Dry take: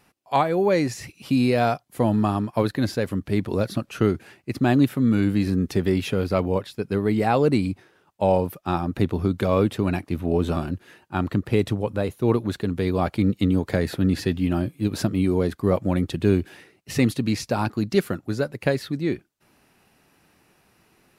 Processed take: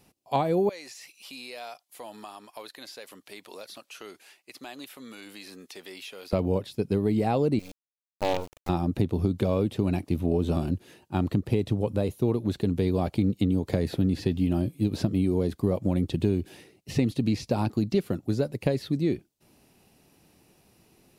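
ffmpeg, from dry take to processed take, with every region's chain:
-filter_complex "[0:a]asettb=1/sr,asplit=3[s0][s1][s2];[s0]atrim=end=0.694[s3];[s1]atrim=start=0.69:end=6.33,asetpts=PTS-STARTPTS,afade=t=in:d=0.004:c=qsin,afade=t=out:st=5.636:d=0.004:c=qsin,highpass=1100,acompressor=threshold=0.0112:ratio=2:attack=3.2:release=140:knee=1:detection=peak[s4];[s2]atrim=start=6.326[s5];[s3][s4]acrossfade=d=0.004:c1=hsin:c2=qsin[s6];[s6][s5]acrossfade=d=0.004:c1=qsin:c2=hsin,asettb=1/sr,asplit=3[s7][s8][s9];[s7]atrim=end=7.594[s10];[s8]atrim=start=7.59:end=8.69,asetpts=PTS-STARTPTS,afade=t=in:d=0.004:c=qsin,afade=t=out:st=1.096:d=0.004:c=qsin,highpass=650,lowpass=2900,acrusher=bits=4:dc=4:mix=0:aa=0.000001[s11];[s9]atrim=start=8.686[s12];[s10][s11]acrossfade=d=0.004:c1=hsin:c2=qsin[s13];[s13][s12]acrossfade=d=0.004:c1=qsin:c2=hsin,acrossover=split=4300[s14][s15];[s15]acompressor=threshold=0.00447:ratio=4:attack=1:release=60[s16];[s14][s16]amix=inputs=2:normalize=0,equalizer=f=1500:t=o:w=1.4:g=-11.5,acompressor=threshold=0.0794:ratio=6,volume=1.26"

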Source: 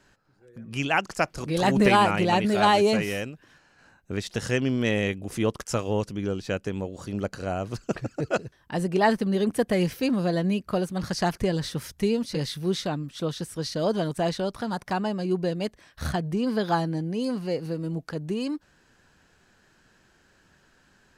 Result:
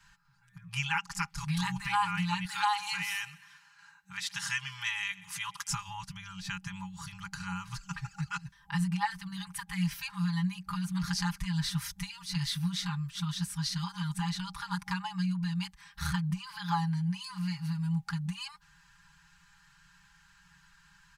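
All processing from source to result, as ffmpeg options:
-filter_complex "[0:a]asettb=1/sr,asplit=3[s0][s1][s2];[s0]atrim=end=2.454[s3];[s1]atrim=start=2.45:end=5.69,asetpts=PTS-STARTPTS,afade=t=in:d=0.004:c=qsin,afade=t=out:st=3.236:d=0.004:c=qsin,highpass=f=580:p=1,aecho=1:1:126|252|378|504:0.0794|0.0421|0.0223|0.0118,atrim=end_sample=142884[s4];[s2]atrim=start=5.686[s5];[s3][s4]acrossfade=d=0.004:c1=hsin:c2=qsin[s6];[s6][s5]acrossfade=d=0.004:c1=qsin:c2=hsin,acompressor=threshold=0.0501:ratio=6,aecho=1:1:5:0.79,afftfilt=real='re*(1-between(b*sr/4096,190,810))':imag='im*(1-between(b*sr/4096,190,810))':win_size=4096:overlap=0.75,volume=0.891"

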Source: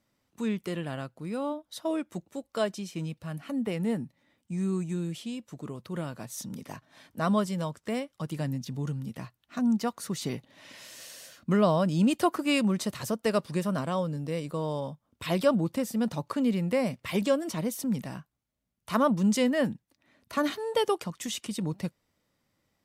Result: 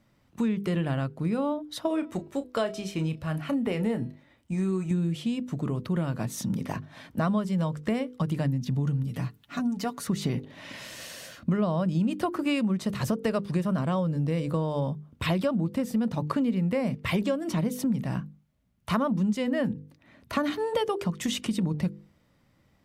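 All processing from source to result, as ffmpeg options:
-filter_complex "[0:a]asettb=1/sr,asplit=3[s0][s1][s2];[s0]atrim=end=1.874[s3];[s1]atrim=start=1.87:end=4.91,asetpts=PTS-STARTPTS,afade=t=in:d=0.004:c=qsin,afade=t=out:st=3.036:d=0.004:c=qsin,equalizer=f=180:t=o:w=0.87:g=-9,asplit=2[s4][s5];[s5]adelay=32,volume=0.251[s6];[s4][s6]amix=inputs=2:normalize=0,atrim=end_sample=134064,bandreject=f=324.4:t=h:w=4,bandreject=f=648.8:t=h:w=4,bandreject=f=973.2:t=h:w=4,bandreject=f=1297.6:t=h:w=4,bandreject=f=1622:t=h:w=4,bandreject=f=1946.4:t=h:w=4,bandreject=f=2270.8:t=h:w=4,bandreject=f=2595.2:t=h:w=4,bandreject=f=2919.6:t=h:w=4,bandreject=f=3244:t=h:w=4,bandreject=f=3568.4:t=h:w=4,bandreject=f=3892.8:t=h:w=4,bandreject=f=4217.2:t=h:w=4,bandreject=f=4541.6:t=h:w=4,bandreject=f=4866:t=h:w=4,bandreject=f=5190.4:t=h:w=4,bandreject=f=5514.8:t=h:w=4[s7];[s2]atrim=start=4.906[s8];[s3][s7]acrossfade=d=0.004:c1=hsin:c2=qsin[s9];[s9][s8]acrossfade=d=0.004:c1=qsin:c2=hsin,asettb=1/sr,asplit=3[s10][s11][s12];[s10]atrim=end=9.034[s13];[s11]atrim=start=9.03:end=10.07,asetpts=PTS-STARTPTS,afade=t=in:d=0.004:c=qsin,afade=t=out:st=1.036:d=0.004:c=qsin,highshelf=f=4200:g=6.5,aecho=1:1:7:0.82,atrim=end_sample=45864,acompressor=threshold=0.00355:ratio=1.5:attack=3.2:release=140:knee=1:detection=peak[s14];[s12]atrim=start=10.066[s15];[s13][s14]acrossfade=d=0.004:c1=hsin:c2=qsin[s16];[s16][s15]acrossfade=d=0.004:c1=qsin:c2=hsin,bass=f=250:g=7,treble=f=4000:g=-7,bandreject=f=50:t=h:w=6,bandreject=f=100:t=h:w=6,bandreject=f=150:t=h:w=6,bandreject=f=200:t=h:w=6,bandreject=f=250:t=h:w=6,bandreject=f=300:t=h:w=6,bandreject=f=350:t=h:w=6,bandreject=f=400:t=h:w=6,bandreject=f=450:t=h:w=6,bandreject=f=500:t=h:w=6,acompressor=threshold=0.0251:ratio=6,volume=2.51"

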